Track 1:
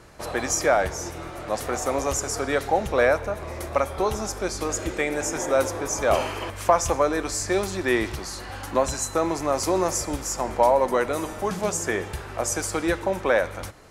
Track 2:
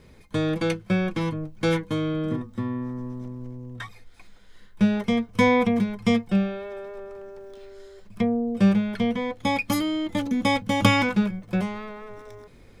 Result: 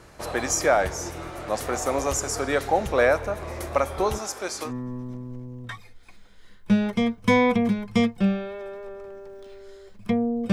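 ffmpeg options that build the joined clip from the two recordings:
ffmpeg -i cue0.wav -i cue1.wav -filter_complex "[0:a]asettb=1/sr,asplit=3[link_01][link_02][link_03];[link_01]atrim=end=4.184[link_04];[link_02]atrim=start=4.18:end=4.73,asetpts=PTS-STARTPTS,afade=type=in:duration=0.004:curve=qsin,afade=type=out:start_time=0.546:duration=0.004:curve=qsin,highpass=frequency=570:poles=1[link_05];[link_03]atrim=start=4.726[link_06];[link_04][link_05]acrossfade=duration=0.004:curve1=hsin:curve2=qsin[link_07];[link_07][link_06]acrossfade=duration=0.004:curve1=qsin:curve2=hsin,apad=whole_dur=10.52,atrim=end=10.52,atrim=end=4.73,asetpts=PTS-STARTPTS[link_08];[1:a]atrim=start=2.74:end=8.63,asetpts=PTS-STARTPTS[link_09];[link_08][link_09]acrossfade=duration=0.1:curve1=tri:curve2=tri" out.wav

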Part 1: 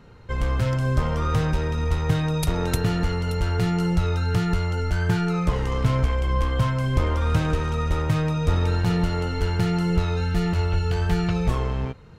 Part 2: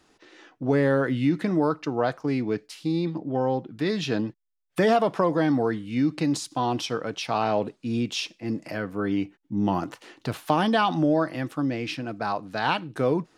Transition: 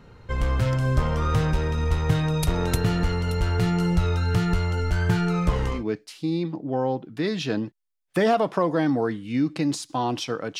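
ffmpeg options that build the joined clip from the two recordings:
ffmpeg -i cue0.wav -i cue1.wav -filter_complex "[0:a]apad=whole_dur=10.59,atrim=end=10.59,atrim=end=5.84,asetpts=PTS-STARTPTS[link_01];[1:a]atrim=start=2.3:end=7.21,asetpts=PTS-STARTPTS[link_02];[link_01][link_02]acrossfade=duration=0.16:curve1=tri:curve2=tri" out.wav

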